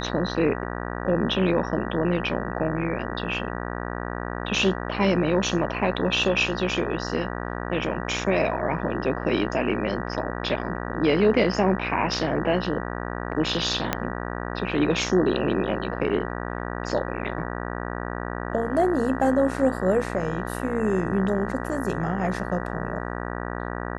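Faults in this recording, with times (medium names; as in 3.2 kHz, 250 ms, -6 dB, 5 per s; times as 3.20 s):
buzz 60 Hz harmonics 32 -31 dBFS
13.93 s: pop -7 dBFS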